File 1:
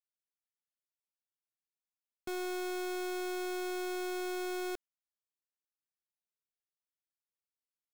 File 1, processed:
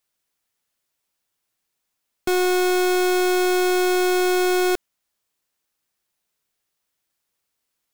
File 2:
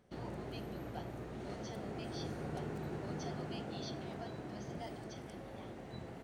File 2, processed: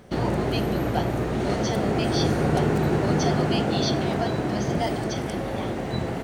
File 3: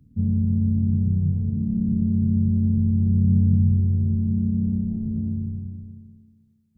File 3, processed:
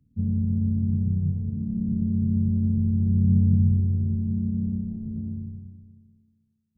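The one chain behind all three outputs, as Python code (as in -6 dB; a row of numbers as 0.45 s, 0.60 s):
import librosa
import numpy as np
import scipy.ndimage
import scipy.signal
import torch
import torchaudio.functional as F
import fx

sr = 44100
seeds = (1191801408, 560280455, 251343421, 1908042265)

y = fx.upward_expand(x, sr, threshold_db=-35.0, expansion=1.5)
y = y * 10.0 ** (-24 / 20.0) / np.sqrt(np.mean(np.square(y)))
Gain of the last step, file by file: +17.5 dB, +20.0 dB, -0.5 dB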